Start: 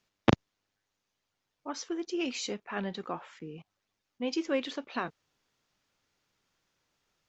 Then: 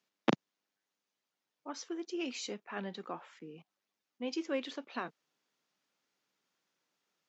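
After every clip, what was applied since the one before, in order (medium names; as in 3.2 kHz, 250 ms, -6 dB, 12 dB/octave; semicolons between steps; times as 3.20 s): high-pass 170 Hz 24 dB/octave; trim -5 dB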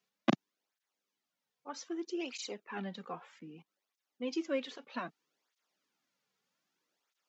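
cancelling through-zero flanger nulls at 0.63 Hz, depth 3.5 ms; trim +2 dB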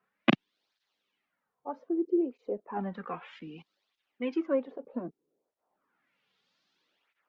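dynamic bell 820 Hz, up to -3 dB, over -47 dBFS, Q 0.72; LFO low-pass sine 0.34 Hz 410–4200 Hz; trim +5.5 dB; Opus 64 kbps 48 kHz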